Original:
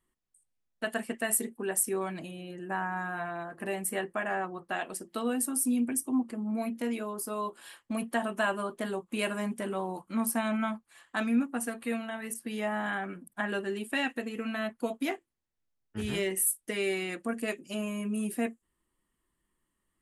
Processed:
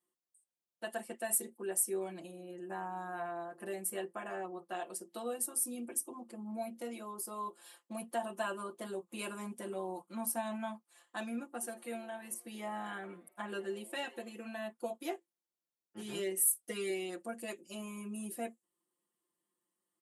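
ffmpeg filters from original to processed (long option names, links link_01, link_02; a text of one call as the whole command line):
ffmpeg -i in.wav -filter_complex "[0:a]asettb=1/sr,asplit=3[link_01][link_02][link_03];[link_01]atrim=end=11.514[link_04];[link_02]atrim=start=11.51:end=14.32,asetpts=PTS-STARTPTS,afade=type=in:duration=0.004:curve=qsin,afade=type=out:start_time=2.806:duration=0.004:curve=qsin,asplit=5[link_05][link_06][link_07][link_08][link_09];[link_06]adelay=81,afreqshift=130,volume=-23dB[link_10];[link_07]adelay=162,afreqshift=260,volume=-27.6dB[link_11];[link_08]adelay=243,afreqshift=390,volume=-32.2dB[link_12];[link_09]adelay=324,afreqshift=520,volume=-36.7dB[link_13];[link_05][link_10][link_11][link_12][link_13]amix=inputs=5:normalize=0,atrim=end_sample=123921[link_14];[link_03]atrim=start=14.316[link_15];[link_04][link_14]acrossfade=duration=0.004:curve1=hsin:curve2=qsin[link_16];[link_16][link_15]acrossfade=duration=0.004:curve1=qsin:curve2=hsin,asettb=1/sr,asplit=3[link_17][link_18][link_19];[link_17]atrim=end=16.404[link_20];[link_18]atrim=start=16.4:end=16.9,asetpts=PTS-STARTPTS,afade=type=in:duration=0.004:curve=qsin,afade=type=out:start_time=0.496:duration=0.004:curve=qsin,aecho=1:1:4.2:0.77,atrim=end_sample=22050[link_21];[link_19]atrim=start=16.896[link_22];[link_20][link_21]acrossfade=duration=0.004:curve1=hsin:curve2=qsin[link_23];[link_23][link_22]acrossfade=duration=0.004:curve1=qsin:curve2=hsin,highpass=320,equalizer=frequency=1900:width_type=o:width=1.6:gain=-9,aecho=1:1:5.7:0.98,volume=-6dB" out.wav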